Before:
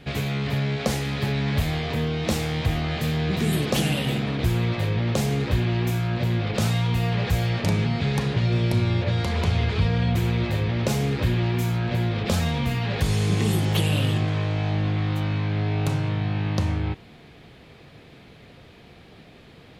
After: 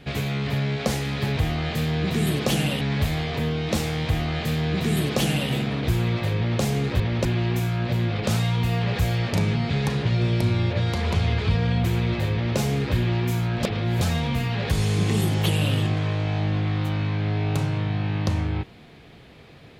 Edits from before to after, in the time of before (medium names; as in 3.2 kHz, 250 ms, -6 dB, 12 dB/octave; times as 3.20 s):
2.63–4.07 s: copy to 1.37 s
10.64–10.89 s: copy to 5.56 s
11.94–12.32 s: reverse